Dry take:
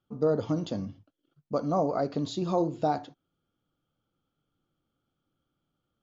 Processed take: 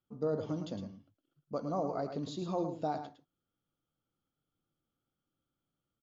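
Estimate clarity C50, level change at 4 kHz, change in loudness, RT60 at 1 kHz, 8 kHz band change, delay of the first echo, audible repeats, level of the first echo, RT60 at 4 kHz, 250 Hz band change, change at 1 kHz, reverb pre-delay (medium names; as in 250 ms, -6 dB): no reverb, -7.5 dB, -7.5 dB, no reverb, no reading, 109 ms, 1, -8.5 dB, no reverb, -7.5 dB, -7.5 dB, no reverb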